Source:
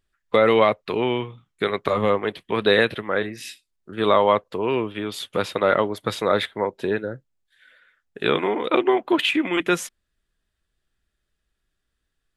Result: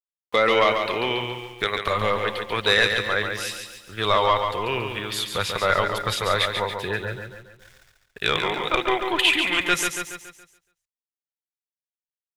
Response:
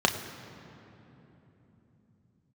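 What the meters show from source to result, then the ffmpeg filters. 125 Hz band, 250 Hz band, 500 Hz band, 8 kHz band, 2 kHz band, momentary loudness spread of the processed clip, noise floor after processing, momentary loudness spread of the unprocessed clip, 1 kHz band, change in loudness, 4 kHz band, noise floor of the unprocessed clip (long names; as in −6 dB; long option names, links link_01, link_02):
+0.5 dB, −7.5 dB, −4.5 dB, +7.0 dB, +3.5 dB, 12 LU, below −85 dBFS, 11 LU, +0.5 dB, −0.5 dB, +5.5 dB, −77 dBFS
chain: -filter_complex "[0:a]tiltshelf=frequency=970:gain=-6,asoftclip=type=tanh:threshold=-7.5dB,asplit=2[link_01][link_02];[link_02]adelay=285.7,volume=-16dB,highshelf=frequency=4000:gain=-6.43[link_03];[link_01][link_03]amix=inputs=2:normalize=0,aeval=exprs='val(0)*gte(abs(val(0)),0.00422)':channel_layout=same,asplit=2[link_04][link_05];[link_05]aecho=0:1:140|280|420|560|700:0.501|0.226|0.101|0.0457|0.0206[link_06];[link_04][link_06]amix=inputs=2:normalize=0,asubboost=boost=10.5:cutoff=78"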